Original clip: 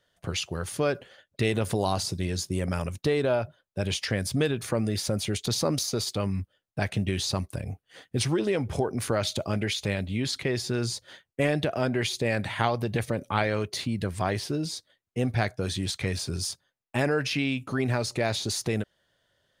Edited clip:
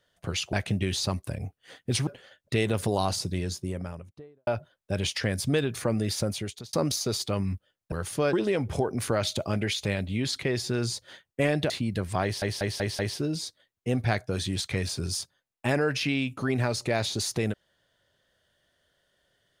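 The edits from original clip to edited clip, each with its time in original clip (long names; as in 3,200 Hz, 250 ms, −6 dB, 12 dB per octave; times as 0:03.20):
0:00.53–0:00.94: swap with 0:06.79–0:08.33
0:02.05–0:03.34: fade out and dull
0:05.09–0:05.60: fade out
0:11.70–0:13.76: remove
0:14.29: stutter 0.19 s, 5 plays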